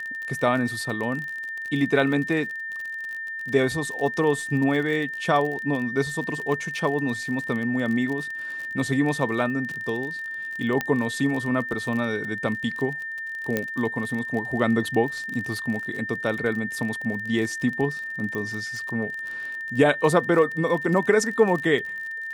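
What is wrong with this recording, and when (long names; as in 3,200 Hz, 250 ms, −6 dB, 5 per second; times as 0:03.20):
surface crackle 40 per second −30 dBFS
whistle 1,800 Hz −30 dBFS
0:10.81: click −11 dBFS
0:13.57: click −10 dBFS
0:18.35: click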